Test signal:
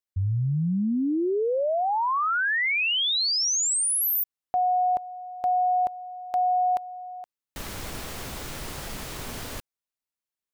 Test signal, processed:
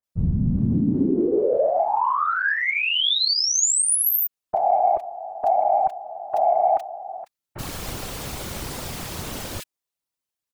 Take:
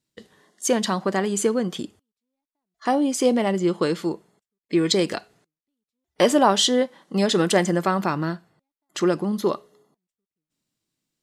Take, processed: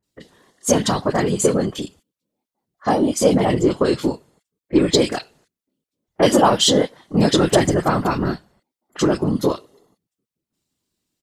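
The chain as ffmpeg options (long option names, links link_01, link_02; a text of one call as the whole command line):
ffmpeg -i in.wav -filter_complex "[0:a]afftfilt=real='hypot(re,im)*cos(2*PI*random(0))':imag='hypot(re,im)*sin(2*PI*random(1))':win_size=512:overlap=0.75,aeval=exprs='0.398*(cos(1*acos(clip(val(0)/0.398,-1,1)))-cos(1*PI/2))+0.0178*(cos(5*acos(clip(val(0)/0.398,-1,1)))-cos(5*PI/2))':channel_layout=same,acrossover=split=1800[link_01][link_02];[link_02]adelay=30[link_03];[link_01][link_03]amix=inputs=2:normalize=0,volume=8.5dB" out.wav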